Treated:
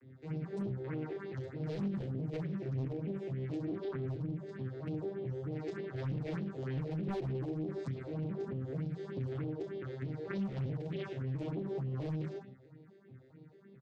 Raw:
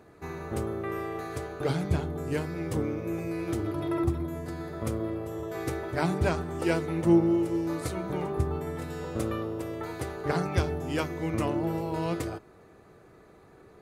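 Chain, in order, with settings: arpeggiated vocoder minor triad, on C3, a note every 0.218 s; low shelf 270 Hz +11 dB; reverse bouncing-ball echo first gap 30 ms, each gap 1.15×, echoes 5; hard clip -17 dBFS, distortion -12 dB; phaser stages 4, 3.3 Hz, lowest notch 170–1600 Hz; compressor 3:1, threshold -26 dBFS, peak gain reduction 6.5 dB; limiter -25 dBFS, peak gain reduction 6 dB; ten-band EQ 250 Hz +4 dB, 2000 Hz +10 dB, 4000 Hz +10 dB; Doppler distortion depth 0.4 ms; gain -7.5 dB

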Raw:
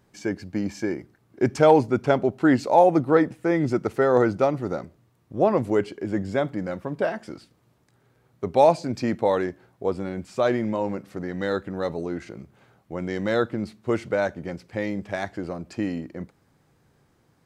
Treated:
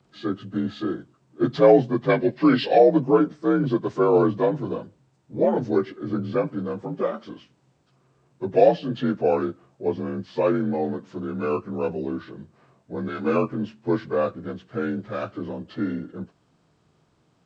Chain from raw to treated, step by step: inharmonic rescaling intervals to 85%; 2.1–2.78 spectral gain 1500–5500 Hz +11 dB; 13.07–13.54 doubler 13 ms -3 dB; gain +2 dB

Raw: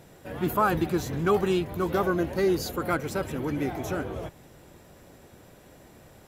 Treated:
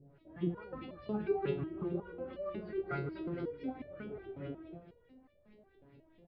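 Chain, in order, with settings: bell 1100 Hz -12.5 dB 2.3 oct; tapped delay 0.301/0.486/0.776 s -12/-5/-15.5 dB; LFO low-pass saw up 4.7 Hz 330–3100 Hz; 1.6–2.27 high shelf 3100 Hz -11 dB; on a send: dark delay 0.157 s, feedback 46%, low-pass 2800 Hz, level -14 dB; on the sum: downsampling 11025 Hz; stepped resonator 5.5 Hz 140–590 Hz; gain +3.5 dB

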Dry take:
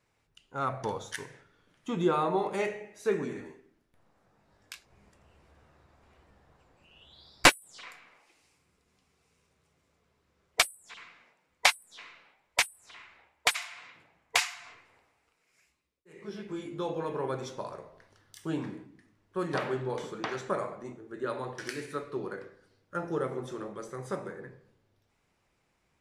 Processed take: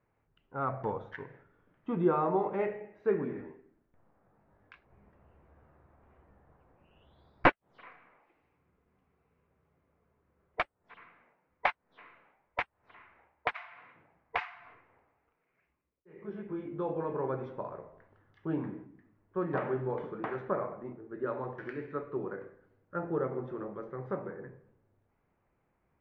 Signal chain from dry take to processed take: Bessel low-pass 1400 Hz, order 4

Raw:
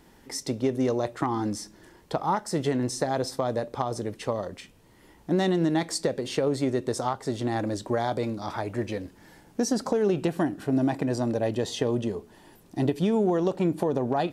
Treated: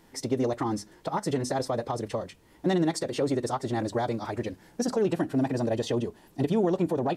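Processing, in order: notches 50/100/150/200/250 Hz; time stretch by phase-locked vocoder 0.5×

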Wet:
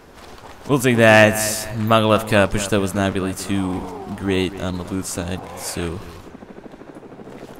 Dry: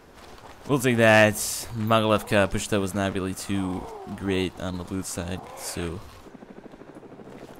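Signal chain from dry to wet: analogue delay 0.236 s, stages 4096, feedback 36%, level -14.5 dB; gain +5.5 dB

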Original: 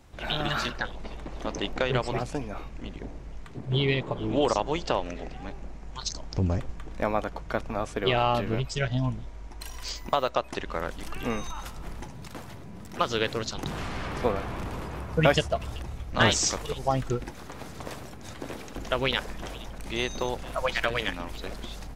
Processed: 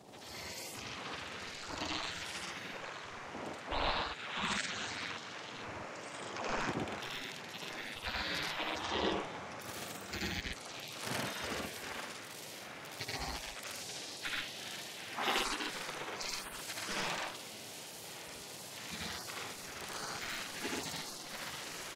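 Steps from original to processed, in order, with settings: spectral gate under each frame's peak -30 dB weak; tilt -3 dB/oct; band noise 100–870 Hz -69 dBFS; loudspeakers at several distances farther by 27 m 0 dB, 43 m -1 dB; gain +10.5 dB

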